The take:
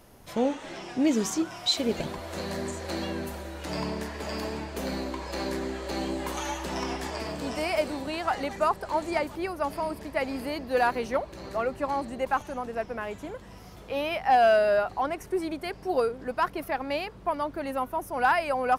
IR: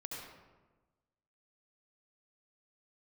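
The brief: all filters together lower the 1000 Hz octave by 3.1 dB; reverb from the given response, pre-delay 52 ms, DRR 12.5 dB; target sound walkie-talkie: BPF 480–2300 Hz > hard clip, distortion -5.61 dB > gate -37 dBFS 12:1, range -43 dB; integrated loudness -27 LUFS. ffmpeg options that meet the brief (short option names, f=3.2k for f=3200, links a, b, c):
-filter_complex "[0:a]equalizer=f=1k:t=o:g=-3.5,asplit=2[a][b];[1:a]atrim=start_sample=2205,adelay=52[c];[b][c]afir=irnorm=-1:irlink=0,volume=-11.5dB[d];[a][d]amix=inputs=2:normalize=0,highpass=480,lowpass=2.3k,asoftclip=type=hard:threshold=-30.5dB,agate=range=-43dB:threshold=-37dB:ratio=12,volume=10dB"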